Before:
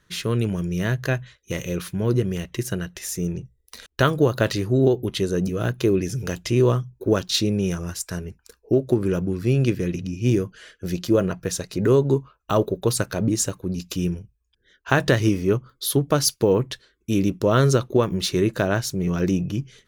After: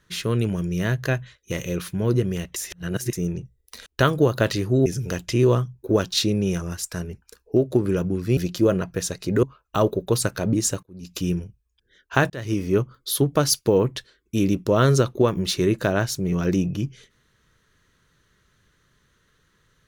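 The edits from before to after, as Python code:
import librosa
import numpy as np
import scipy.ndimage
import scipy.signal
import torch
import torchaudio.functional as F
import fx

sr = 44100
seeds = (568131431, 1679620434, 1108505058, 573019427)

y = fx.edit(x, sr, fx.reverse_span(start_s=2.56, length_s=0.57),
    fx.cut(start_s=4.86, length_s=1.17),
    fx.cut(start_s=9.54, length_s=1.32),
    fx.cut(start_s=11.92, length_s=0.26),
    fx.fade_in_from(start_s=13.58, length_s=0.35, curve='qua', floor_db=-23.0),
    fx.fade_in_span(start_s=15.05, length_s=0.41), tone=tone)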